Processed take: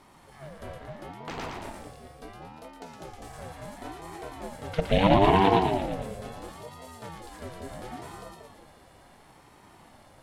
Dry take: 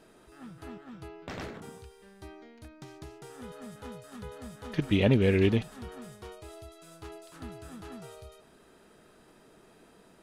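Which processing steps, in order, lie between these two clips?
split-band echo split 370 Hz, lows 0.182 s, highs 0.115 s, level -4 dB; ring modulator with a swept carrier 450 Hz, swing 30%, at 0.73 Hz; gain +5 dB

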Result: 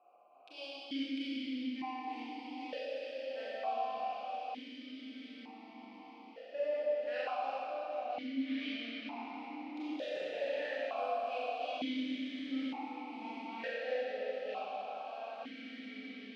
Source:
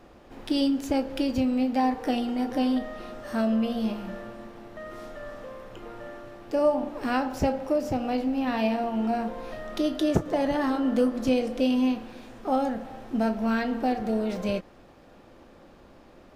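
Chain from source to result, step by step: Wiener smoothing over 25 samples; differentiator; on a send: diffused feedback echo 1.99 s, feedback 40%, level -4 dB; on the sum: spectral gate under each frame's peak -30 dB strong; reverse; upward compressor, threshold -59 dBFS; reverse; air absorption 75 m; Schroeder reverb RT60 2.7 s, combs from 30 ms, DRR -9 dB; vowel sequencer 1.1 Hz; gain +10.5 dB

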